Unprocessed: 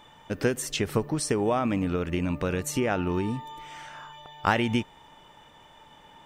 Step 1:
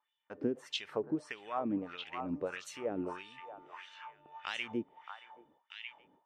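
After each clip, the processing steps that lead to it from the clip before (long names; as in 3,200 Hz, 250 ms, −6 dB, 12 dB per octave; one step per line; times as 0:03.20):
echo through a band-pass that steps 625 ms, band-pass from 1,000 Hz, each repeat 1.4 octaves, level −3.5 dB
noise gate with hold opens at −39 dBFS
auto-filter band-pass sine 1.6 Hz 280–3,600 Hz
level −3 dB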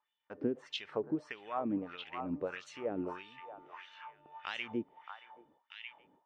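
high-frequency loss of the air 110 metres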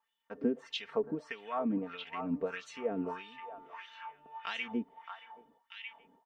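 comb filter 4.4 ms, depth 78%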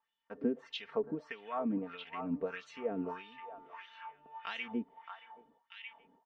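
high-frequency loss of the air 100 metres
level −1.5 dB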